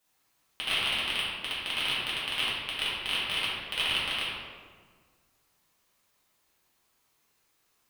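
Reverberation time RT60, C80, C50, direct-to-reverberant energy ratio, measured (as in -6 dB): 1.7 s, 1.0 dB, -1.5 dB, -9.0 dB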